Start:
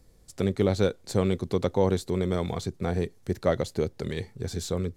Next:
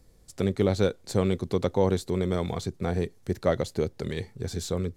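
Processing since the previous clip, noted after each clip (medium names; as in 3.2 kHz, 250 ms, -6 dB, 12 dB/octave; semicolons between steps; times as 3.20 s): no audible change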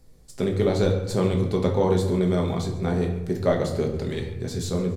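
feedback delay 140 ms, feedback 51%, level -19.5 dB; reverberation RT60 0.90 s, pre-delay 5 ms, DRR 0.5 dB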